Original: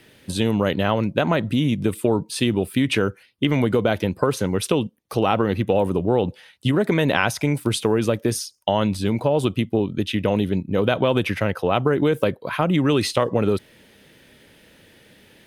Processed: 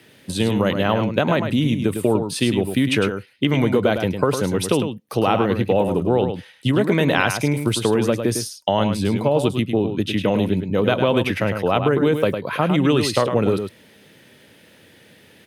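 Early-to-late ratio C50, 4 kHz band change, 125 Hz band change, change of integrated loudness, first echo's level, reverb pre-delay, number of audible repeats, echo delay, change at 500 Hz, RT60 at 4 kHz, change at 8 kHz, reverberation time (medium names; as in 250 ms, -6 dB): no reverb, +1.5 dB, +1.5 dB, +1.5 dB, -7.5 dB, no reverb, 1, 105 ms, +1.5 dB, no reverb, +1.5 dB, no reverb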